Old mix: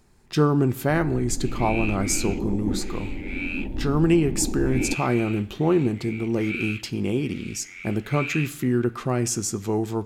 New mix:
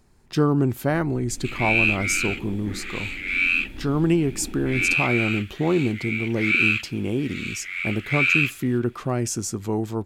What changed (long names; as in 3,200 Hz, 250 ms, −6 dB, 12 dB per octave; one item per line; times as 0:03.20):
first sound −8.5 dB
second sound +11.5 dB
reverb: off